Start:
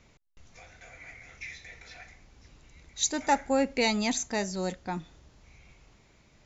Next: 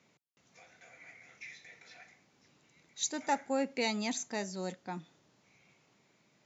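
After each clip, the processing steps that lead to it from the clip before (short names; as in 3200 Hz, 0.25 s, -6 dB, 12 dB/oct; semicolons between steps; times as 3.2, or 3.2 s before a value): HPF 140 Hz 24 dB/oct; gain -6.5 dB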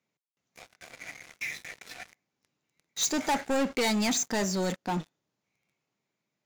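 sample leveller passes 5; gain -5 dB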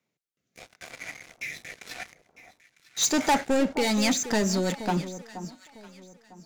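rotary speaker horn 0.85 Hz, later 6 Hz, at 3.68; echo with dull and thin repeats by turns 0.476 s, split 1100 Hz, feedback 50%, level -11.5 dB; gain +5.5 dB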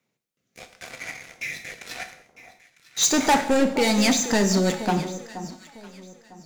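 non-linear reverb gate 0.24 s falling, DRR 7 dB; gain +3.5 dB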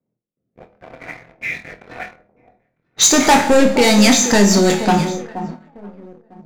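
low-pass opened by the level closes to 510 Hz, open at -21.5 dBFS; flutter echo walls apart 4.2 m, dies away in 0.22 s; sample leveller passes 1; gain +4.5 dB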